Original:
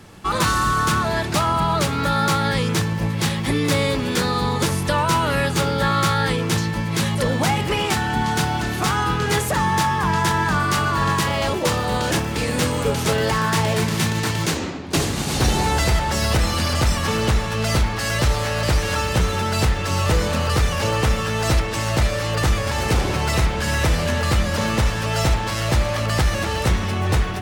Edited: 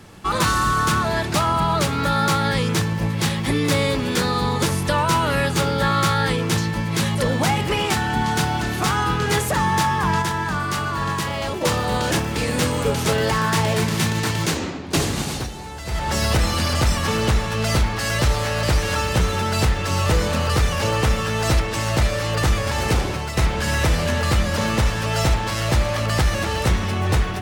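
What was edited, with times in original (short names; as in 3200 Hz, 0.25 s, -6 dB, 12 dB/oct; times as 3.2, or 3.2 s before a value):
10.22–11.61 gain -4 dB
15.2–16.13 dip -14.5 dB, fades 0.29 s
22.91–23.37 fade out, to -9.5 dB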